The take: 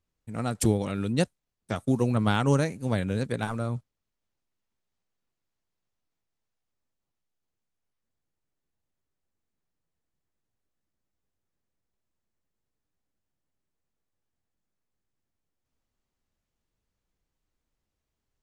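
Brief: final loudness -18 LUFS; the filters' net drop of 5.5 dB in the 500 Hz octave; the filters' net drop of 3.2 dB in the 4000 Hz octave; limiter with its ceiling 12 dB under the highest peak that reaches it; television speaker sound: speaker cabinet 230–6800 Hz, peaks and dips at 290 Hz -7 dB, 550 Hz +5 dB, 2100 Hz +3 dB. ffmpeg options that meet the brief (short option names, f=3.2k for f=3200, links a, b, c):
-af "equalizer=f=500:t=o:g=-9,equalizer=f=4k:t=o:g=-4,alimiter=level_in=1dB:limit=-24dB:level=0:latency=1,volume=-1dB,highpass=f=230:w=0.5412,highpass=f=230:w=1.3066,equalizer=f=290:t=q:w=4:g=-7,equalizer=f=550:t=q:w=4:g=5,equalizer=f=2.1k:t=q:w=4:g=3,lowpass=f=6.8k:w=0.5412,lowpass=f=6.8k:w=1.3066,volume=22.5dB"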